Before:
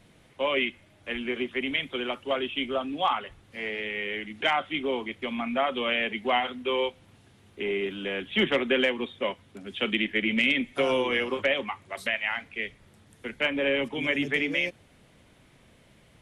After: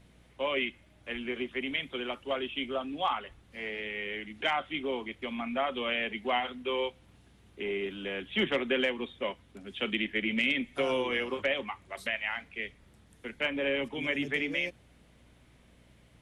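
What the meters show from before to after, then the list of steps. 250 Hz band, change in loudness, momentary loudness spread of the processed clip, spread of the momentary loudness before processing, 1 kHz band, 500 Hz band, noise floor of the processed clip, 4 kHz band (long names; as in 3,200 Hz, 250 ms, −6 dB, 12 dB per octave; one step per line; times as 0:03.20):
−4.5 dB, −4.5 dB, 9 LU, 9 LU, −4.5 dB, −4.5 dB, −61 dBFS, −4.5 dB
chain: mains hum 60 Hz, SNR 29 dB
level −4.5 dB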